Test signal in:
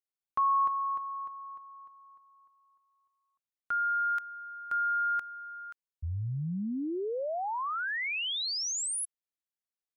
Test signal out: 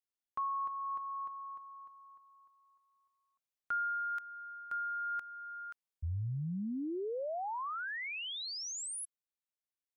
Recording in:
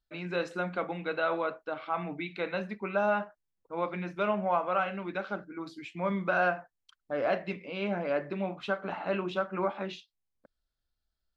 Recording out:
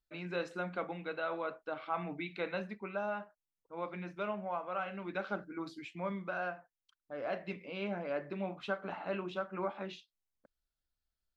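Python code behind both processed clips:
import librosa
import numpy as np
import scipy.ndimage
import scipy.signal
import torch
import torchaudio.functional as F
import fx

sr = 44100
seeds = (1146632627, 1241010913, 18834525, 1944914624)

y = fx.rider(x, sr, range_db=5, speed_s=0.5)
y = F.gain(torch.from_numpy(y), -6.5).numpy()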